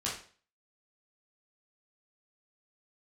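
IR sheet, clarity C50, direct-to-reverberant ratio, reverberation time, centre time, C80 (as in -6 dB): 5.0 dB, -6.5 dB, 0.40 s, 35 ms, 10.5 dB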